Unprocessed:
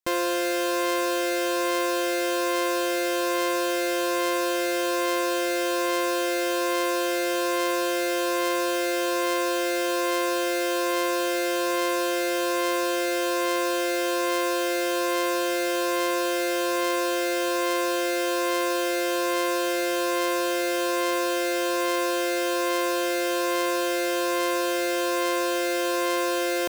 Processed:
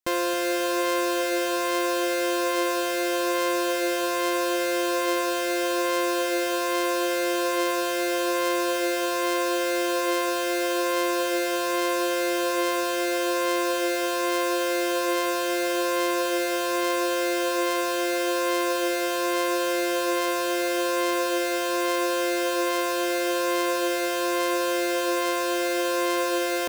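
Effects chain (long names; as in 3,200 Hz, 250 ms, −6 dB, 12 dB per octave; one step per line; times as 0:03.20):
tape delay 268 ms, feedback 79%, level −13 dB, low-pass 1,200 Hz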